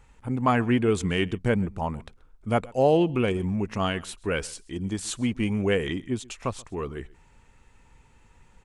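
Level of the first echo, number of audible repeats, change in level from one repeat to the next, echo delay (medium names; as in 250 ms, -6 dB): -23.5 dB, 1, no regular repeats, 131 ms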